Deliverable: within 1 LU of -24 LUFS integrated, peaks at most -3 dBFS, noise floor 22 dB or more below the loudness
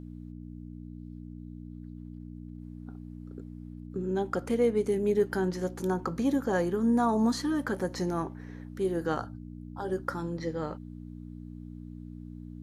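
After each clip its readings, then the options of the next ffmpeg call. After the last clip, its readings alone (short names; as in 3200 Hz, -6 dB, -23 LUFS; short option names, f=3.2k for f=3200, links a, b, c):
hum 60 Hz; harmonics up to 300 Hz; hum level -40 dBFS; loudness -30.0 LUFS; peak -15.0 dBFS; loudness target -24.0 LUFS
-> -af "bandreject=f=60:t=h:w=4,bandreject=f=120:t=h:w=4,bandreject=f=180:t=h:w=4,bandreject=f=240:t=h:w=4,bandreject=f=300:t=h:w=4"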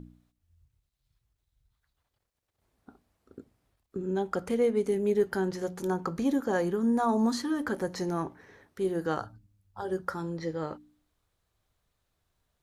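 hum none; loudness -30.0 LUFS; peak -15.0 dBFS; loudness target -24.0 LUFS
-> -af "volume=6dB"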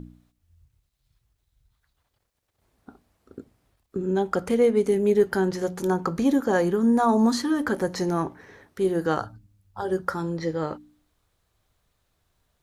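loudness -24.0 LUFS; peak -9.0 dBFS; noise floor -75 dBFS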